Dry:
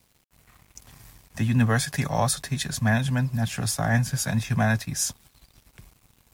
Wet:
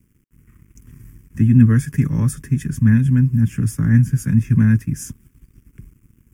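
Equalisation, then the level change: resonant low shelf 460 Hz +12.5 dB, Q 1.5; fixed phaser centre 1700 Hz, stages 4; -3.0 dB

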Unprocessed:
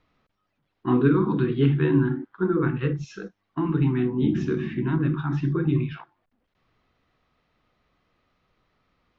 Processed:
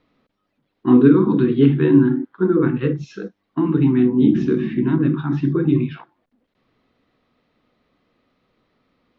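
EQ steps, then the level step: graphic EQ 125/250/500/1000/2000/4000 Hz +3/+12/+8/+3/+4/+7 dB; -4.0 dB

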